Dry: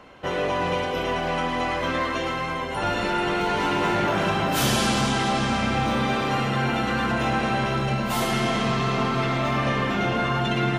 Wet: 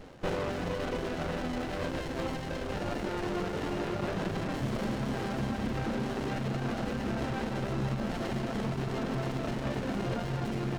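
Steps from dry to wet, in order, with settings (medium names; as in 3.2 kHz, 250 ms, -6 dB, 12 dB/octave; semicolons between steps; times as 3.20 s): CVSD coder 32 kbps; peak limiter -22 dBFS, peak gain reduction 9.5 dB; reverb removal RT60 1 s; reverberation RT60 0.75 s, pre-delay 65 ms, DRR 18.5 dB; sliding maximum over 33 samples; trim +2 dB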